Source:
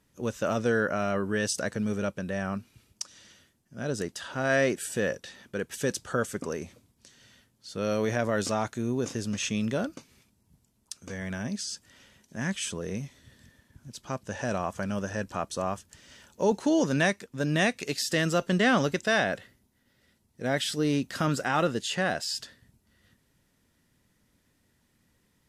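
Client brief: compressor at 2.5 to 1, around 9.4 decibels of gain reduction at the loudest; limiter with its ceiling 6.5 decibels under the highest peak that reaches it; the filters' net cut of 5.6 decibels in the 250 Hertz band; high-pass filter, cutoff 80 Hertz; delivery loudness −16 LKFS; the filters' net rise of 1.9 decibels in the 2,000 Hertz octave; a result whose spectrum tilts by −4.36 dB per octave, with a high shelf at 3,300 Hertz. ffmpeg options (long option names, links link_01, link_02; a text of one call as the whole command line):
ffmpeg -i in.wav -af "highpass=80,equalizer=frequency=250:width_type=o:gain=-7.5,equalizer=frequency=2000:width_type=o:gain=5,highshelf=frequency=3300:gain=-9,acompressor=threshold=-34dB:ratio=2.5,volume=22.5dB,alimiter=limit=-2.5dB:level=0:latency=1" out.wav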